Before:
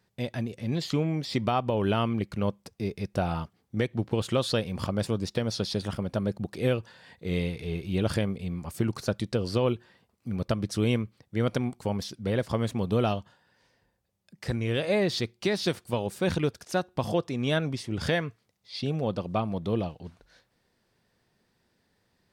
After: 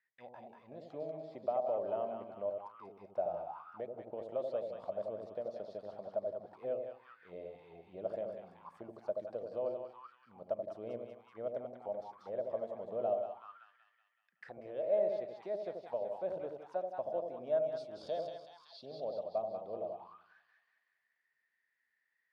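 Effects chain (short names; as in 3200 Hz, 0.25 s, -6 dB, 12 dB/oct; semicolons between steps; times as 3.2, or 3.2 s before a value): 17.66–18.86 resonant high shelf 2900 Hz +12.5 dB, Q 3; split-band echo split 810 Hz, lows 82 ms, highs 0.189 s, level -4 dB; auto-wah 620–1900 Hz, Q 8.7, down, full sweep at -24.5 dBFS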